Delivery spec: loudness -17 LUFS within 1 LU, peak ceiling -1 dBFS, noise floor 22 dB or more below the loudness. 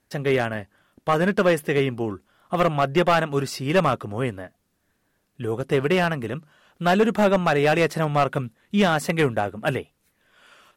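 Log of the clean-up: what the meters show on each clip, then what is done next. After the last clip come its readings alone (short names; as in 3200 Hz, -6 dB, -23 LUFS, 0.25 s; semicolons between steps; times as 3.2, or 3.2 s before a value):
clipped 1.0%; flat tops at -12.0 dBFS; loudness -22.5 LUFS; peak -12.0 dBFS; loudness target -17.0 LUFS
-> clip repair -12 dBFS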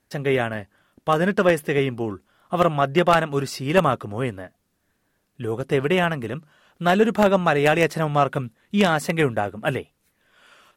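clipped 0.0%; loudness -21.5 LUFS; peak -3.0 dBFS; loudness target -17.0 LUFS
-> gain +4.5 dB; limiter -1 dBFS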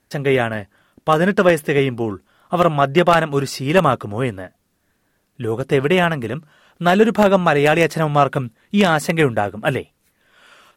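loudness -17.5 LUFS; peak -1.0 dBFS; noise floor -66 dBFS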